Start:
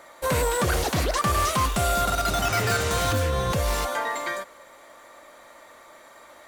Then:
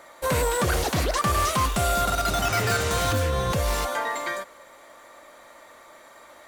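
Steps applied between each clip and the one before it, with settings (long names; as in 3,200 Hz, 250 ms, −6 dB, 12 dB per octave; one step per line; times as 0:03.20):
no processing that can be heard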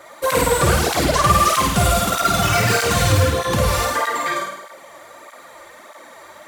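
on a send: flutter between parallel walls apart 8.9 metres, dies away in 0.83 s
on the sum: through-zero flanger with one copy inverted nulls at 1.6 Hz, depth 4.7 ms
level +8 dB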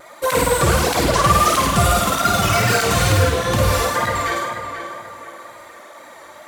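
on a send: tape delay 486 ms, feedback 41%, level −6.5 dB, low-pass 2,600 Hz
on the sum: tape wow and flutter 34 cents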